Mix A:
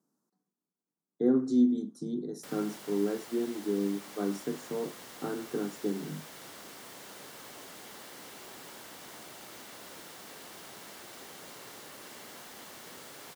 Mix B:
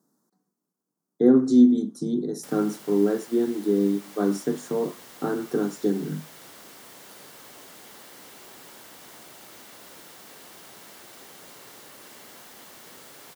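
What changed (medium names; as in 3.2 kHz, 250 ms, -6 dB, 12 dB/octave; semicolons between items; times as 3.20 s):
speech +8.5 dB; master: add treble shelf 11 kHz +4.5 dB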